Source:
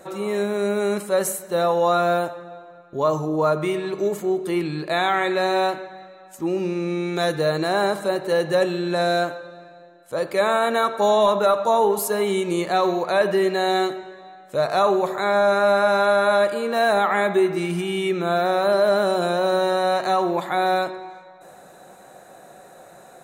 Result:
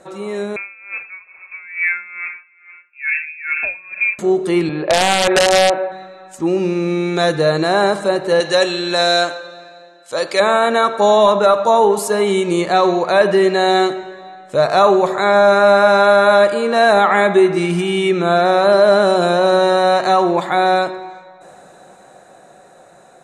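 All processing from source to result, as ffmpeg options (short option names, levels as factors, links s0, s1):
-filter_complex "[0:a]asettb=1/sr,asplit=3[s0][s1][s2];[s0]atrim=end=0.564[s3];[s1]atrim=start=0.56:end=4.19,asetpts=PTS-STARTPTS,afade=t=in:d=0.004:c=qsin,afade=t=out:st=3.626:d=0.004:c=qsin,bandreject=f=50:t=h:w=6,bandreject=f=100:t=h:w=6,bandreject=f=150:t=h:w=6,bandreject=f=200:t=h:w=6,bandreject=f=250:t=h:w=6,bandreject=f=300:t=h:w=6,bandreject=f=350:t=h:w=6,bandreject=f=400:t=h:w=6,bandreject=f=450:t=h:w=6,lowpass=f=2400:t=q:w=0.5098,lowpass=f=2400:t=q:w=0.6013,lowpass=f=2400:t=q:w=0.9,lowpass=f=2400:t=q:w=2.563,afreqshift=-2800,aeval=exprs='val(0)*pow(10,-20*(0.5-0.5*cos(2*PI*2.3*n/s))/20)':c=same[s4];[s2]atrim=start=4.186[s5];[s3][s4]acrossfade=d=0.004:c1=hsin:c2=qsin[s6];[s6][s5]acrossfade=d=0.004:c1=qsin:c2=hsin,asettb=1/sr,asplit=3[s7][s8][s9];[s7]atrim=end=4.694[s10];[s8]atrim=start=4.69:end=5.92,asetpts=PTS-STARTPTS,afade=t=in:d=0.004:c=qsin,afade=t=out:st=1.226:d=0.004:c=qsin,highpass=190,equalizer=f=250:t=q:w=4:g=-3,equalizer=f=550:t=q:w=4:g=10,equalizer=f=800:t=q:w=4:g=5,lowpass=f=3100:w=0.5412,lowpass=f=3100:w=1.3066,acompressor=threshold=0.158:ratio=5:attack=3.2:release=140:knee=1:detection=peak,aeval=exprs='(mod(4.73*val(0)+1,2)-1)/4.73':c=same[s11];[s9]atrim=start=5.916[s12];[s10][s11]acrossfade=d=0.004:c1=hsin:c2=qsin[s13];[s13][s12]acrossfade=d=0.004:c1=qsin:c2=hsin,asettb=1/sr,asplit=3[s14][s15][s16];[s14]atrim=end=8.404[s17];[s15]atrim=start=8.4:end=10.4,asetpts=PTS-STARTPTS,afade=t=in:d=0.004:c=qsin,afade=t=out:st=1.996:d=0.004:c=qsin,highpass=f=410:p=1,equalizer=f=5200:w=0.6:g=9.5[s18];[s16]atrim=start=10.396[s19];[s17][s18]acrossfade=d=0.004:c1=hsin:c2=qsin[s20];[s20][s19]acrossfade=d=0.004:c1=qsin:c2=hsin,lowpass=f=9500:w=0.5412,lowpass=f=9500:w=1.3066,dynaudnorm=f=460:g=11:m=3.76"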